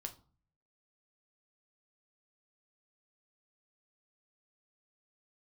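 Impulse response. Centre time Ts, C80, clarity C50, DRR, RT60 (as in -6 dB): 7 ms, 20.0 dB, 15.0 dB, 4.5 dB, 0.40 s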